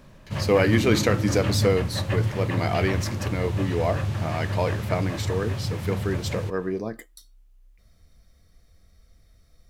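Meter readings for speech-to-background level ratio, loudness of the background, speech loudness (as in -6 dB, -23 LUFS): 1.0 dB, -28.0 LUFS, -27.0 LUFS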